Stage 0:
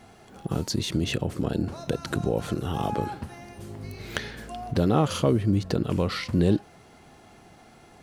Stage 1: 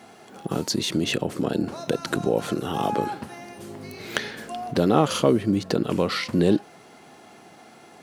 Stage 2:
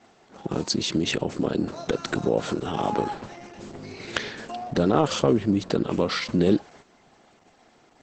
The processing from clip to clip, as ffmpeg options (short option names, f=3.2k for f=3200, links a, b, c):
-af "highpass=200,volume=4.5dB"
-af "agate=range=-8dB:threshold=-46dB:ratio=16:detection=peak" -ar 48000 -c:a libopus -b:a 10k